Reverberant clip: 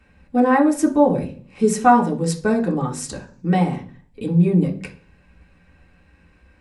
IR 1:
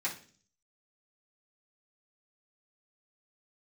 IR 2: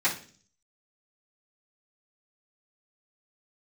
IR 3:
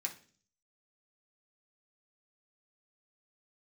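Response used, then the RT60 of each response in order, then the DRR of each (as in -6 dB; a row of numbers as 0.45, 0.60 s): 3; 0.45, 0.45, 0.45 s; -10.0, -14.5, -1.0 dB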